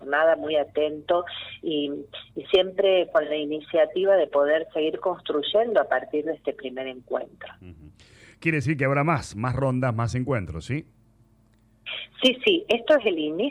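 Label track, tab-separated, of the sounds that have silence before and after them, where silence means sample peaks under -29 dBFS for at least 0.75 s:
8.430000	10.800000	sound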